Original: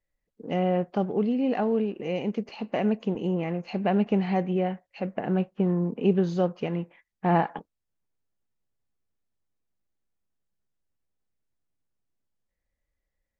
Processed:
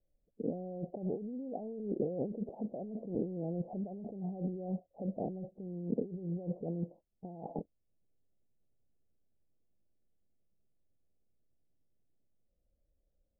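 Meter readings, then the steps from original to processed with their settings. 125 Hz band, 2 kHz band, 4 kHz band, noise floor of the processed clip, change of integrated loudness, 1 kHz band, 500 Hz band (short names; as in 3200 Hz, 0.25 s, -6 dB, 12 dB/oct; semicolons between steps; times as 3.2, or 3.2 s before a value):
-11.0 dB, under -40 dB, under -35 dB, -79 dBFS, -12.5 dB, -19.0 dB, -12.5 dB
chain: negative-ratio compressor -35 dBFS, ratio -1; steep low-pass 700 Hz 48 dB/oct; gain -3.5 dB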